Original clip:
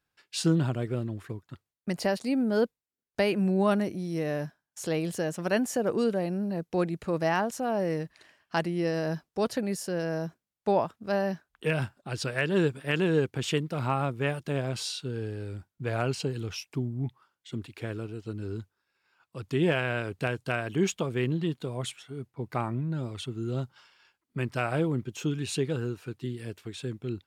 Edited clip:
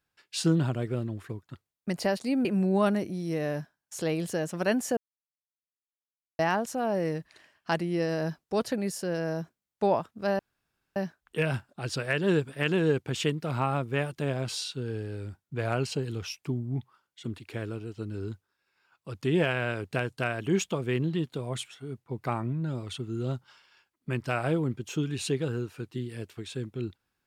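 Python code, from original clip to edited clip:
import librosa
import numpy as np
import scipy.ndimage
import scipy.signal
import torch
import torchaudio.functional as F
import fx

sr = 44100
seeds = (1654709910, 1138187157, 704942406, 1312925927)

y = fx.edit(x, sr, fx.cut(start_s=2.45, length_s=0.85),
    fx.silence(start_s=5.82, length_s=1.42),
    fx.insert_room_tone(at_s=11.24, length_s=0.57), tone=tone)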